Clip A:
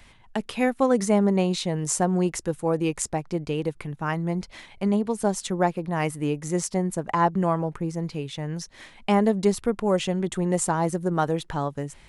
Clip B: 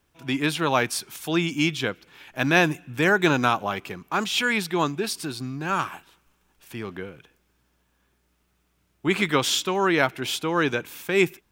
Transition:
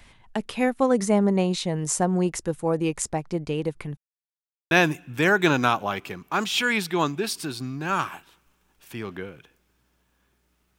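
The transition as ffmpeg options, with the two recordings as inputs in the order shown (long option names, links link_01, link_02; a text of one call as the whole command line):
ffmpeg -i cue0.wav -i cue1.wav -filter_complex "[0:a]apad=whole_dur=10.78,atrim=end=10.78,asplit=2[link_01][link_02];[link_01]atrim=end=3.97,asetpts=PTS-STARTPTS,afade=type=out:start_time=3.966:duration=0.004:curve=hsin[link_03];[link_02]atrim=start=3.97:end=4.71,asetpts=PTS-STARTPTS,volume=0[link_04];[1:a]atrim=start=2.51:end=8.58,asetpts=PTS-STARTPTS,afade=type=in:duration=0.004:curve=hsin[link_05];[link_03][link_04][link_05]concat=n=3:v=0:a=1" out.wav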